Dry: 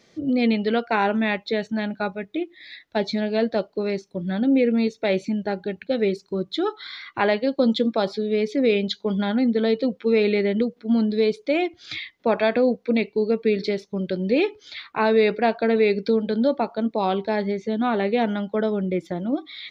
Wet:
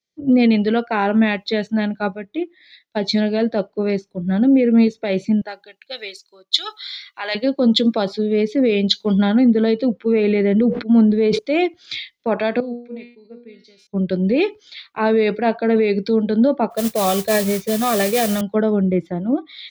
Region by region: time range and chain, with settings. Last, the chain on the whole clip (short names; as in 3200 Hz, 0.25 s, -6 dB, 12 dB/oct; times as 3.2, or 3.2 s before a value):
5.41–7.35 HPF 760 Hz + high shelf 3800 Hz +6 dB
10.12–11.39 LPF 3400 Hz + sustainer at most 66 dB/s
12.6–13.87 high shelf 3800 Hz +4 dB + resonator 240 Hz, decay 0.47 s, mix 90% + sustainer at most 80 dB/s
16.7–18.41 comb 1.7 ms, depth 95% + modulation noise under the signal 12 dB
whole clip: dynamic EQ 160 Hz, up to +4 dB, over -31 dBFS, Q 0.81; maximiser +13 dB; three-band expander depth 100%; gain -8 dB